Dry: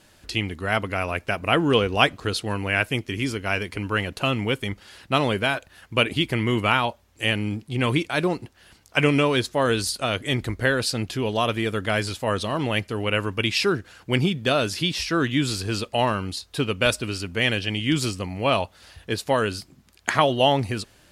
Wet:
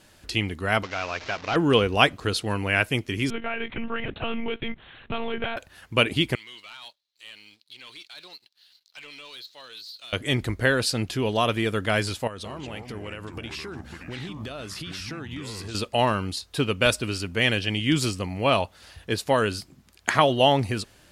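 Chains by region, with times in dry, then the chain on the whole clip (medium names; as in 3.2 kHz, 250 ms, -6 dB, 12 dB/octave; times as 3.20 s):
0.83–1.56 s: one-bit delta coder 32 kbps, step -31.5 dBFS + bass shelf 470 Hz -10.5 dB
3.30–5.57 s: compression 12:1, threshold -23 dBFS + monotone LPC vocoder at 8 kHz 230 Hz
6.35–10.13 s: de-esser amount 95% + band-pass filter 4.1 kHz, Q 6.5 + waveshaping leveller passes 2
12.27–15.75 s: compression 16:1, threshold -32 dBFS + ever faster or slower copies 180 ms, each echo -5 st, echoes 2, each echo -6 dB
whole clip: none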